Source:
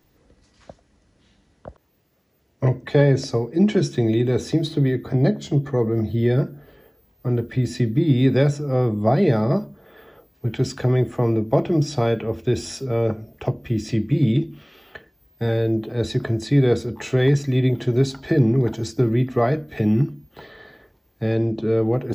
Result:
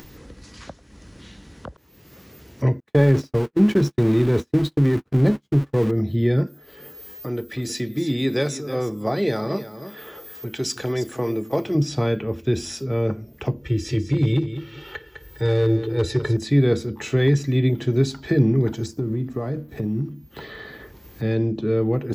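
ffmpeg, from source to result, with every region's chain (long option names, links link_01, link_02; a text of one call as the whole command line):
ffmpeg -i in.wav -filter_complex "[0:a]asettb=1/sr,asplit=3[link_01][link_02][link_03];[link_01]atrim=end=2.804[link_04];[link_02]atrim=start=2.8:end=5.91,asetpts=PTS-STARTPTS,afade=type=in:duration=0.004:curve=qsin,afade=type=out:start_time=3.106:duration=0.004:curve=qsin,aeval=exprs='val(0)+0.5*0.0631*sgn(val(0))':channel_layout=same,agate=range=-54dB:threshold=-23dB:ratio=16:release=100:detection=peak,highshelf=frequency=3300:gain=-9.5[link_05];[link_03]atrim=start=5.906[link_06];[link_04][link_05]acrossfade=duration=0.004:curve1=hsin:curve2=qsin[link_07];[link_07][link_06]acrossfade=duration=0.004:curve1=qsin:curve2=hsin,asettb=1/sr,asplit=3[link_08][link_09][link_10];[link_08]atrim=end=6.474[link_11];[link_09]atrim=start=6.47:end=11.75,asetpts=PTS-STARTPTS,afade=type=in:duration=0.004:curve=qsin,afade=type=out:start_time=5.276:duration=0.004:curve=qsin,bass=frequency=250:gain=-11,treble=frequency=4000:gain=9,aecho=1:1:316:0.211,atrim=end_sample=232848[link_12];[link_10]atrim=start=11.746[link_13];[link_11][link_12]acrossfade=duration=0.004:curve1=hsin:curve2=qsin[link_14];[link_14][link_13]acrossfade=duration=0.004:curve1=qsin:curve2=hsin,asettb=1/sr,asplit=3[link_15][link_16][link_17];[link_15]atrim=end=13.614[link_18];[link_16]atrim=start=13.61:end=16.37,asetpts=PTS-STARTPTS,afade=type=in:duration=0.004:curve=qsin,afade=type=out:start_time=2.756:duration=0.004:curve=qsin,aecho=1:1:2.2:0.81,atrim=end_sample=121716,asoftclip=type=hard:threshold=-12.5dB,aecho=1:1:203|406:0.266|0.0452,atrim=end_sample=121716[link_19];[link_17]atrim=start=16.366[link_20];[link_18][link_19]acrossfade=duration=0.004:curve1=hsin:curve2=qsin[link_21];[link_21][link_20]acrossfade=duration=0.004:curve1=qsin:curve2=hsin,asettb=1/sr,asplit=3[link_22][link_23][link_24];[link_22]atrim=end=18.864[link_25];[link_23]atrim=start=18.86:end=20.11,asetpts=PTS-STARTPTS,afade=type=in:duration=0.004:curve=qsin,afade=type=out:start_time=1.246:duration=0.004:curve=qsin,equalizer=frequency=2600:width_type=o:width=2:gain=-12,acompressor=threshold=-20dB:ratio=6:attack=3.2:release=140:knee=1:detection=peak,aeval=exprs='sgn(val(0))*max(abs(val(0))-0.00126,0)':channel_layout=same[link_26];[link_24]atrim=start=20.106[link_27];[link_25][link_26]acrossfade=duration=0.004:curve1=hsin:curve2=qsin[link_28];[link_28][link_27]acrossfade=duration=0.004:curve1=qsin:curve2=hsin,equalizer=frequency=670:width_type=o:width=0.61:gain=-7,acompressor=mode=upward:threshold=-29dB:ratio=2.5" out.wav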